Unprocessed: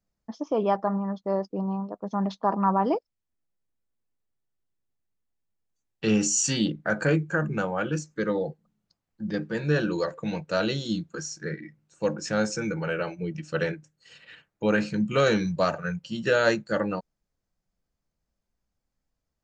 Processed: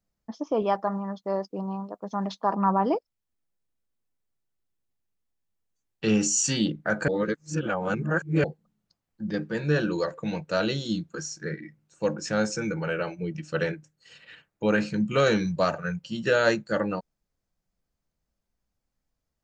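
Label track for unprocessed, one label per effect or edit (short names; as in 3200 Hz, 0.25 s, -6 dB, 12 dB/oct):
0.620000	2.550000	tilt +1.5 dB/oct
7.080000	8.440000	reverse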